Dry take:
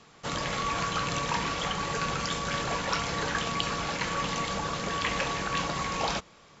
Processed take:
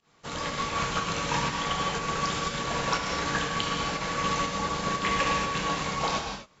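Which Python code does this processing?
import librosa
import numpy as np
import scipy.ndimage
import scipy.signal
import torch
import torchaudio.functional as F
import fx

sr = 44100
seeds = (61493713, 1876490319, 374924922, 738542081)

y = fx.volume_shaper(x, sr, bpm=121, per_beat=1, depth_db=-19, release_ms=126.0, shape='fast start')
y = fx.rev_gated(y, sr, seeds[0], gate_ms=280, shape='flat', drr_db=-1.0)
y = fx.upward_expand(y, sr, threshold_db=-40.0, expansion=1.5)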